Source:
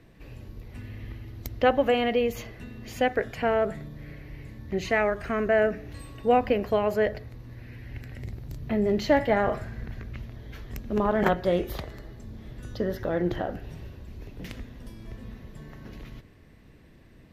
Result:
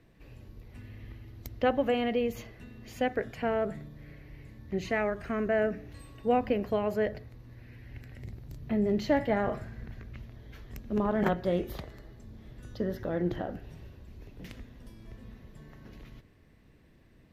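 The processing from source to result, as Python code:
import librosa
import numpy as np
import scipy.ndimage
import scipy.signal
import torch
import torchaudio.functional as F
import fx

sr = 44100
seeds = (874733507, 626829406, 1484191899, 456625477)

y = fx.dynamic_eq(x, sr, hz=200.0, q=0.77, threshold_db=-38.0, ratio=4.0, max_db=5)
y = y * librosa.db_to_amplitude(-6.5)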